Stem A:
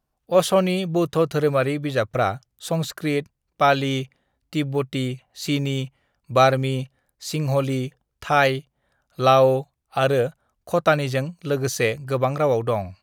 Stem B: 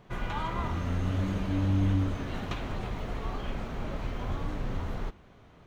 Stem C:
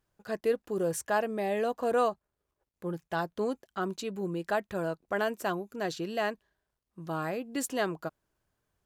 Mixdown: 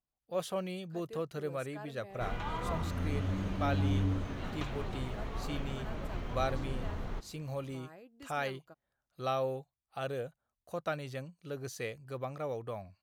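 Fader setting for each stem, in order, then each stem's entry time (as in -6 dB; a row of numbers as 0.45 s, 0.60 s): -17.5 dB, -4.5 dB, -19.5 dB; 0.00 s, 2.10 s, 0.65 s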